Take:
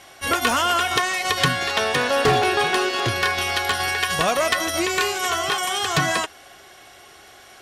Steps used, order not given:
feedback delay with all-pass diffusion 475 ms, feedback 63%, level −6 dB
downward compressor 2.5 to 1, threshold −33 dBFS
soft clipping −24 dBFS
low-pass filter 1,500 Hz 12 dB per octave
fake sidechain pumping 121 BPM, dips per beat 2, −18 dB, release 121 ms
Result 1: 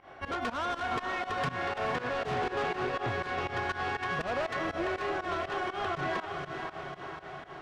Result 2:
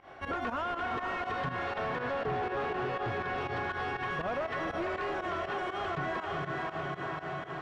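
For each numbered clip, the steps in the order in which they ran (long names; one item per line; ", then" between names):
low-pass filter, then soft clipping, then downward compressor, then feedback delay with all-pass diffusion, then fake sidechain pumping
feedback delay with all-pass diffusion, then fake sidechain pumping, then soft clipping, then low-pass filter, then downward compressor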